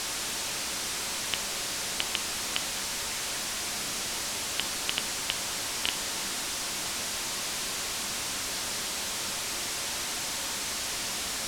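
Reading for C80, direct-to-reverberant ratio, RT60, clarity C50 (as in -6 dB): 16.0 dB, 8.5 dB, 0.70 s, 13.5 dB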